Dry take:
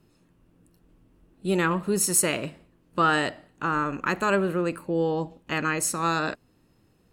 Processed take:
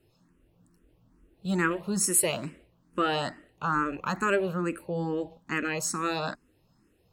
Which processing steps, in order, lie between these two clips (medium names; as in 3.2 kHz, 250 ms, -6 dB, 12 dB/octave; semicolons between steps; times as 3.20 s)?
barber-pole phaser +2.3 Hz